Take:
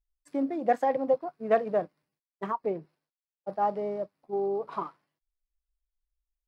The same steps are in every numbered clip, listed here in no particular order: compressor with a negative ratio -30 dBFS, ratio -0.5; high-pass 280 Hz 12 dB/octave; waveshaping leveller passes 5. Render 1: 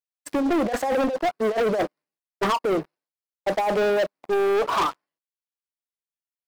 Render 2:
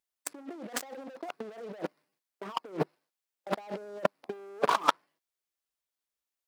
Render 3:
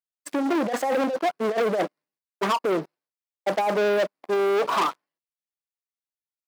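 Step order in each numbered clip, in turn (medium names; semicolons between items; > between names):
compressor with a negative ratio > high-pass > waveshaping leveller; waveshaping leveller > compressor with a negative ratio > high-pass; compressor with a negative ratio > waveshaping leveller > high-pass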